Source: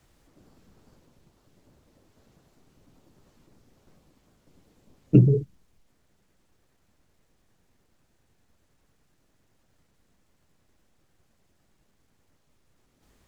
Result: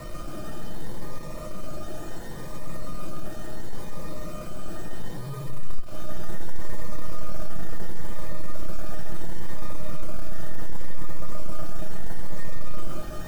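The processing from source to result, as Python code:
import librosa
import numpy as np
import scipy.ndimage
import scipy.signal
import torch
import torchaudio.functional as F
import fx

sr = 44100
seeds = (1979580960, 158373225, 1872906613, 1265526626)

p1 = np.sign(x) * np.sqrt(np.mean(np.square(x)))
p2 = scipy.signal.sosfilt(scipy.signal.butter(4, 1600.0, 'lowpass', fs=sr, output='sos'), p1)
p3 = p2 + 0.46 * np.pad(p2, (int(5.9 * sr / 1000.0), 0))[:len(p2)]
p4 = fx.rider(p3, sr, range_db=4, speed_s=2.0)
p5 = p3 + (p4 * librosa.db_to_amplitude(3.0))
p6 = fx.quant_dither(p5, sr, seeds[0], bits=6, dither='none')
p7 = fx.comb_fb(p6, sr, f0_hz=610.0, decay_s=0.24, harmonics='all', damping=0.0, mix_pct=90)
p8 = p7 + fx.echo_feedback(p7, sr, ms=131, feedback_pct=41, wet_db=-7.0, dry=0)
p9 = fx.notch_cascade(p8, sr, direction='rising', hz=0.71)
y = p9 * librosa.db_to_amplitude(6.5)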